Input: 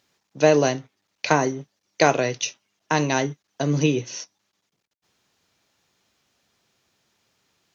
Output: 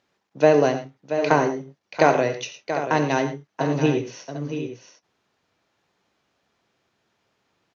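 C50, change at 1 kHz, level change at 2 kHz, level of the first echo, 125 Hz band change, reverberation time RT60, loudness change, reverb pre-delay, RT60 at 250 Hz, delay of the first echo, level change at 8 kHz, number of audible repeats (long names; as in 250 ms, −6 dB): no reverb audible, +2.0 dB, −0.5 dB, −15.0 dB, −1.5 dB, no reverb audible, +0.5 dB, no reverb audible, no reverb audible, 66 ms, can't be measured, 4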